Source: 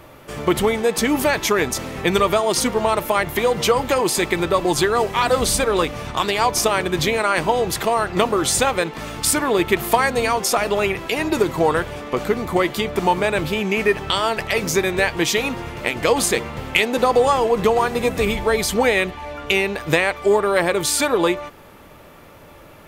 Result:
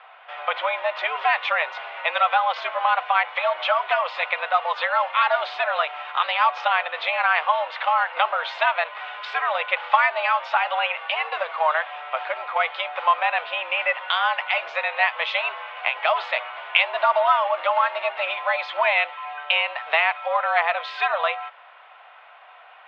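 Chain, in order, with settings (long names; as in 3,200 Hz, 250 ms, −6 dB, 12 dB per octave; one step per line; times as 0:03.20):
single-sideband voice off tune +150 Hz 560–3,200 Hz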